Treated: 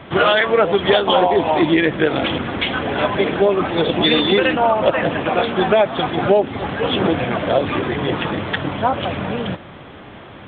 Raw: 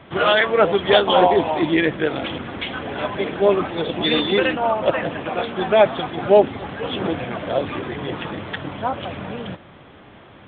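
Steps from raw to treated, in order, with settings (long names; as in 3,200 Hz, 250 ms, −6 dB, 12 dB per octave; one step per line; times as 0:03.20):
downward compressor 6 to 1, threshold −18 dBFS, peak gain reduction 10.5 dB
level +7 dB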